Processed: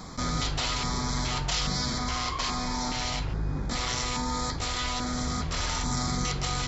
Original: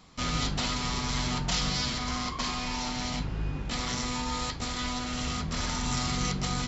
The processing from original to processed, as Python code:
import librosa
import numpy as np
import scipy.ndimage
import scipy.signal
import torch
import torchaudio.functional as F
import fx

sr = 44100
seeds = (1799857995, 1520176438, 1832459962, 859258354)

y = fx.filter_lfo_notch(x, sr, shape='square', hz=1.2, low_hz=210.0, high_hz=2800.0, q=1.2)
y = fx.env_flatten(y, sr, amount_pct=50)